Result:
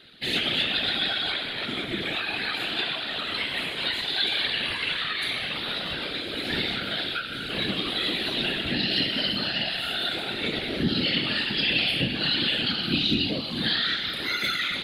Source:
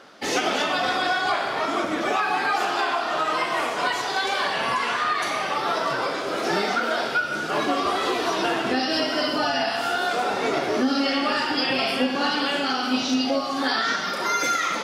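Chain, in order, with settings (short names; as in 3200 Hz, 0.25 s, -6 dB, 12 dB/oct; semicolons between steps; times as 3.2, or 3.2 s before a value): whisperiser; EQ curve 140 Hz 0 dB, 260 Hz -3 dB, 1100 Hz -19 dB, 1700 Hz -4 dB, 4000 Hz +8 dB, 5700 Hz -21 dB, 9700 Hz -3 dB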